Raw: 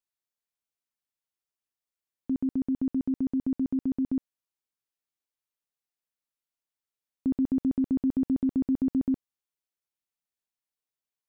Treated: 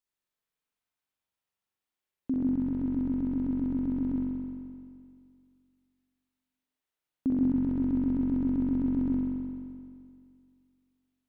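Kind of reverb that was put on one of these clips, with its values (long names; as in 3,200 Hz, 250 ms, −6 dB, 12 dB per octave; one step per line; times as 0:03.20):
spring reverb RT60 2.2 s, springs 43 ms, chirp 20 ms, DRR −5 dB
level −1 dB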